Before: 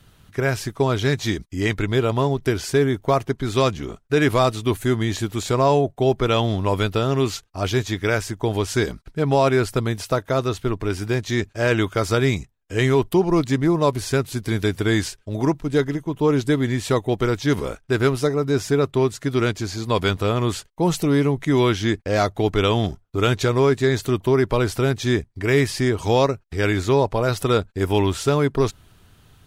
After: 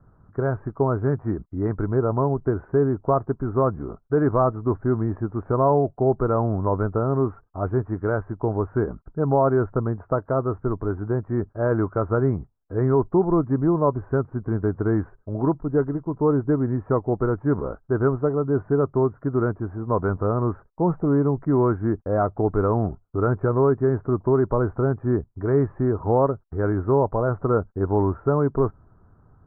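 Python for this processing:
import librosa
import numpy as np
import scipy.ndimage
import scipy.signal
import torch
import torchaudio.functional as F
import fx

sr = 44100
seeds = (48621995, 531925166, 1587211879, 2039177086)

y = scipy.signal.sosfilt(scipy.signal.butter(8, 1400.0, 'lowpass', fs=sr, output='sos'), x)
y = F.gain(torch.from_numpy(y), -1.5).numpy()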